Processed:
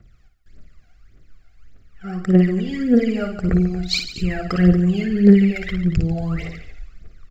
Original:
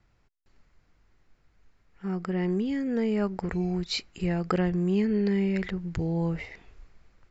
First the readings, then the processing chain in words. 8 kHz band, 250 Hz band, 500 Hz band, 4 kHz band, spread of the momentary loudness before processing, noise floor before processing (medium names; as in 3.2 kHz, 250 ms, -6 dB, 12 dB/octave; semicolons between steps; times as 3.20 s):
no reading, +10.5 dB, +7.0 dB, +9.0 dB, 8 LU, -67 dBFS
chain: phaser 1.7 Hz, delay 1.5 ms, feedback 79%; Butterworth band-stop 920 Hz, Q 2.5; multi-tap echo 55/142/232 ms -7/-13/-15 dB; trim +3.5 dB